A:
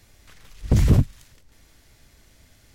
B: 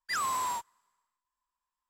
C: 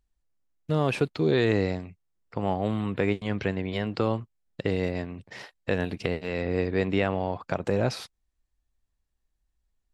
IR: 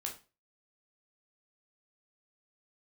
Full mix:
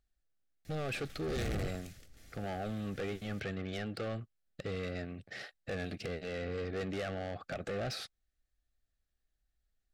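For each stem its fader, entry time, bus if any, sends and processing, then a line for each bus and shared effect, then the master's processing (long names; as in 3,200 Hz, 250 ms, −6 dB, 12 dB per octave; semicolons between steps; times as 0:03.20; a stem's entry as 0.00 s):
−3.0 dB, 0.65 s, no send, brickwall limiter −16.5 dBFS, peak gain reduction 8.5 dB
−15.5 dB, 1.20 s, no send, no processing
−5.0 dB, 0.00 s, no send, graphic EQ with 15 bands 630 Hz +3 dB, 1,600 Hz +5 dB, 4,000 Hz +4 dB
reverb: not used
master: soft clipping −33 dBFS, distortion −4 dB; Butterworth band-reject 970 Hz, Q 3.3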